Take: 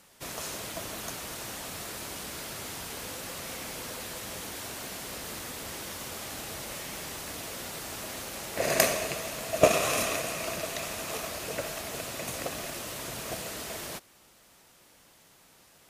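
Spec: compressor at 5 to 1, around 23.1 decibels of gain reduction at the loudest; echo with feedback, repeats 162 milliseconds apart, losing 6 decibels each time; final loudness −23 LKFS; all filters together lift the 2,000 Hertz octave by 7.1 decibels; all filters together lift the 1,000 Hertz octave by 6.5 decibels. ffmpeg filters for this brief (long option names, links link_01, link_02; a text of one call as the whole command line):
ffmpeg -i in.wav -af "equalizer=frequency=1000:width_type=o:gain=7,equalizer=frequency=2000:width_type=o:gain=7,acompressor=threshold=-40dB:ratio=5,aecho=1:1:162|324|486|648|810|972:0.501|0.251|0.125|0.0626|0.0313|0.0157,volume=17dB" out.wav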